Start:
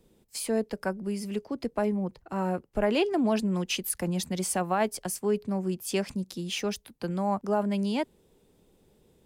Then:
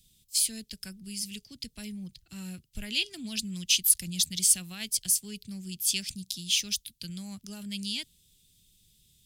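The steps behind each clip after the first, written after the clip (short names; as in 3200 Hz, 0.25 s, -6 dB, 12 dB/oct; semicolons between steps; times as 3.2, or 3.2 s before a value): EQ curve 130 Hz 0 dB, 500 Hz -27 dB, 970 Hz -28 dB, 3400 Hz +11 dB; gain -1 dB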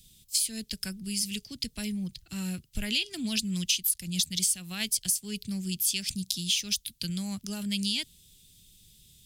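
compressor 6:1, threshold -31 dBFS, peak gain reduction 15 dB; gain +6.5 dB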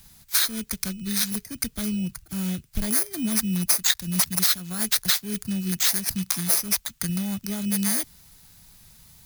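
FFT order left unsorted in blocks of 16 samples; gain +6 dB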